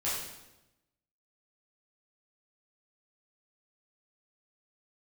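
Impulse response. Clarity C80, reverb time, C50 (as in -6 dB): 4.0 dB, 0.95 s, 1.0 dB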